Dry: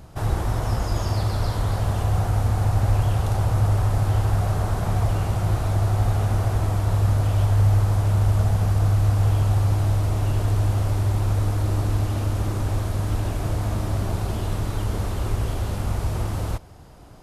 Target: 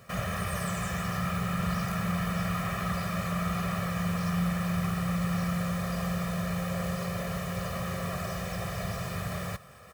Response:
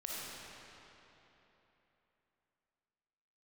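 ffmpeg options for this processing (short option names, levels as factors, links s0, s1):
-af "highpass=42,aecho=1:1:2.9:0.97,areverse,acompressor=mode=upward:threshold=0.0158:ratio=2.5,areverse,asetrate=76440,aresample=44100,lowshelf=f=380:g=-8.5,bandreject=f=1100:w=22,volume=0.531"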